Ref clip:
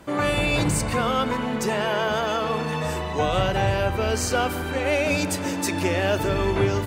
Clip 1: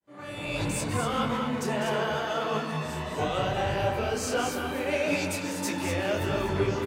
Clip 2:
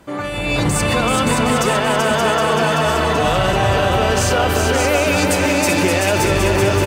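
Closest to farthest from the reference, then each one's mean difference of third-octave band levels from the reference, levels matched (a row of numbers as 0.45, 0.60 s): 1, 2; 3.5, 4.5 dB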